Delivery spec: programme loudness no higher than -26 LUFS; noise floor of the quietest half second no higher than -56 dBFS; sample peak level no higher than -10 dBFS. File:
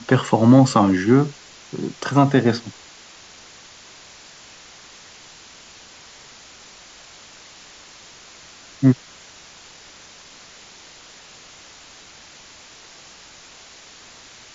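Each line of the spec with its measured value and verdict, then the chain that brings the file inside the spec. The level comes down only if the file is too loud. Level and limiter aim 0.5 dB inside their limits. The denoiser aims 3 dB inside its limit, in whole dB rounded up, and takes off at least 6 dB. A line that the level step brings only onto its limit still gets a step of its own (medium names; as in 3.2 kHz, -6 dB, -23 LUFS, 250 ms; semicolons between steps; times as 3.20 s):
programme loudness -17.5 LUFS: fail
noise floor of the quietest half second -45 dBFS: fail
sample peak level -3.0 dBFS: fail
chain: noise reduction 6 dB, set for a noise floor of -45 dBFS; trim -9 dB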